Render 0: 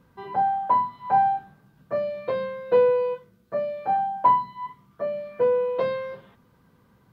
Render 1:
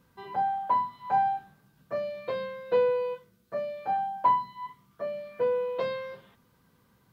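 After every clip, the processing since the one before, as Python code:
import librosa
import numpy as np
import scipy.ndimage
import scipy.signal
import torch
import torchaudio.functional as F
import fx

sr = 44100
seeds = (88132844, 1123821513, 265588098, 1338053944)

y = fx.high_shelf(x, sr, hz=2500.0, db=9.5)
y = y * librosa.db_to_amplitude(-6.0)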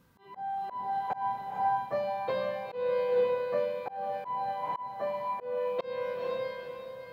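y = fx.echo_diffused(x, sr, ms=493, feedback_pct=42, wet_db=-3.5)
y = fx.auto_swell(y, sr, attack_ms=276.0)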